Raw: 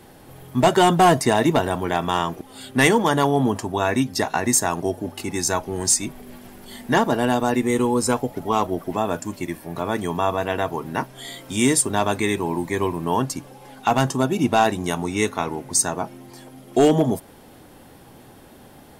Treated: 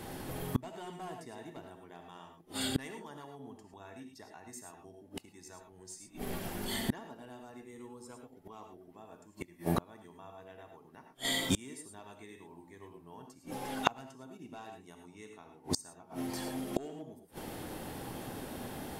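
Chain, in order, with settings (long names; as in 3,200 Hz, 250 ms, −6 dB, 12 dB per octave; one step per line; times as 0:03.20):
reverb whose tail is shaped and stops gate 130 ms rising, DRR 4 dB
gate with flip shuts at −19 dBFS, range −33 dB
level +2.5 dB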